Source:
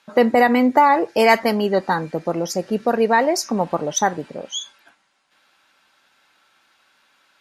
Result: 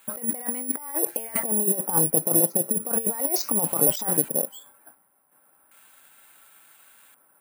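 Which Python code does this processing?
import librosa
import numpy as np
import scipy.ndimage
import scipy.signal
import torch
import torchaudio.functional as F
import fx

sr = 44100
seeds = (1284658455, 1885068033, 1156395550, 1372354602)

y = fx.peak_eq(x, sr, hz=1700.0, db=-8.5, octaves=0.26, at=(1.89, 4.14))
y = fx.over_compress(y, sr, threshold_db=-23.0, ratio=-0.5)
y = fx.filter_lfo_lowpass(y, sr, shape='square', hz=0.35, low_hz=940.0, high_hz=3500.0, q=0.82)
y = (np.kron(y[::4], np.eye(4)[0]) * 4)[:len(y)]
y = fx.end_taper(y, sr, db_per_s=600.0)
y = F.gain(torch.from_numpy(y), -5.5).numpy()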